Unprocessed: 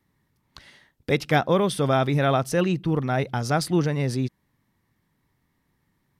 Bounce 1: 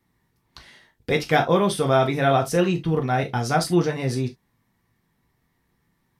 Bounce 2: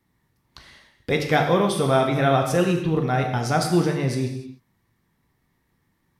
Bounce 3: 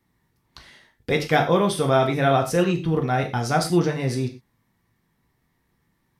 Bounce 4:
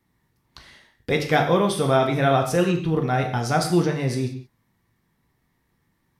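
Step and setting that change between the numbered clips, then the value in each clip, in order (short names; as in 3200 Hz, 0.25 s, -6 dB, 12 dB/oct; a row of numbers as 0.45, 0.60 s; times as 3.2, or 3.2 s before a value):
non-linear reverb, gate: 90, 330, 140, 210 ms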